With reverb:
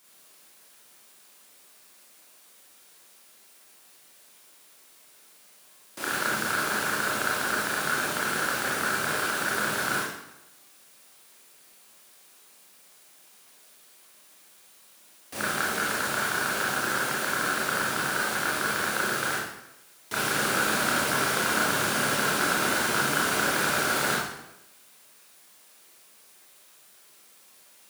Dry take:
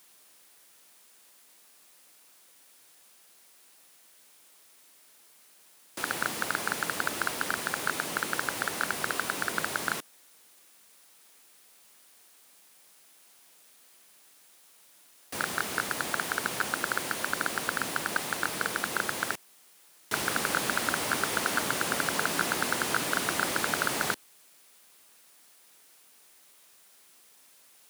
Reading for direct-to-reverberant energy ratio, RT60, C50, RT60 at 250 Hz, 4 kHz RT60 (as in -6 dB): -6.0 dB, 0.90 s, 0.5 dB, 0.85 s, 0.70 s